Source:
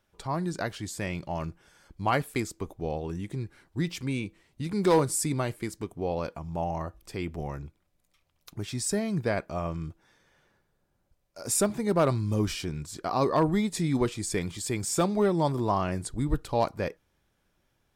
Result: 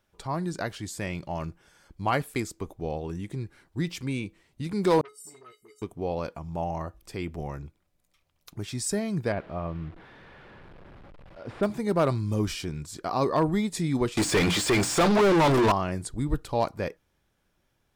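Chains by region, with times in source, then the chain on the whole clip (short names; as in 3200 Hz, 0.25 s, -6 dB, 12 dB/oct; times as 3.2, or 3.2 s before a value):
5.01–5.82 resonator 420 Hz, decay 0.17 s, harmonics odd, mix 100% + dispersion highs, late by 56 ms, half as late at 480 Hz + core saturation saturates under 1700 Hz
9.32–11.63 delta modulation 64 kbps, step -41 dBFS + air absorption 400 m
14.17–15.72 notches 60/120/180/240/300 Hz + de-esser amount 80% + overdrive pedal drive 35 dB, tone 2900 Hz, clips at -14 dBFS
whole clip: dry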